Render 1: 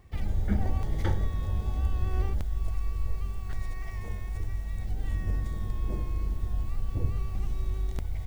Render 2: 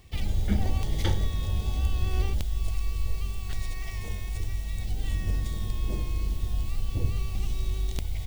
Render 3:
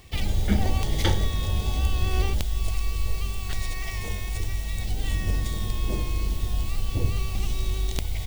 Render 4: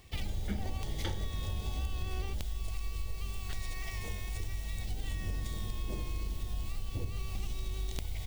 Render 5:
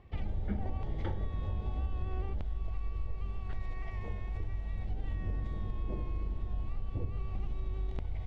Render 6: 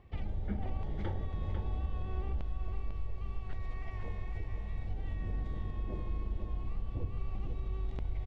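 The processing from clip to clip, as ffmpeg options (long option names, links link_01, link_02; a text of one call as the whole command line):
ffmpeg -i in.wav -af "highshelf=frequency=2200:width_type=q:width=1.5:gain=8.5,volume=1.5dB" out.wav
ffmpeg -i in.wav -af "lowshelf=frequency=260:gain=-5,volume=7dB" out.wav
ffmpeg -i in.wav -af "acompressor=threshold=-24dB:ratio=4,volume=-7dB" out.wav
ffmpeg -i in.wav -af "lowpass=1400,volume=1dB" out.wav
ffmpeg -i in.wav -af "aecho=1:1:498:0.473,volume=-1.5dB" out.wav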